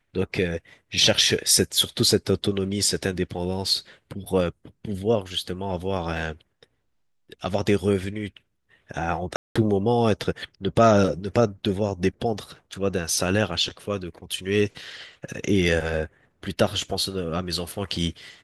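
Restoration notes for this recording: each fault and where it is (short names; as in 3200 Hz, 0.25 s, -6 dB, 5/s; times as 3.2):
9.36–9.55 gap 0.195 s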